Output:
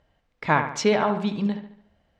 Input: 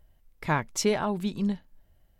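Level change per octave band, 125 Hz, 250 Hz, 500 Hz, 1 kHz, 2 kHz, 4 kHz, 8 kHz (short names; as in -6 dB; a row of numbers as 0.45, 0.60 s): +2.5, +3.5, +5.5, +7.0, +6.5, +3.0, -2.5 dB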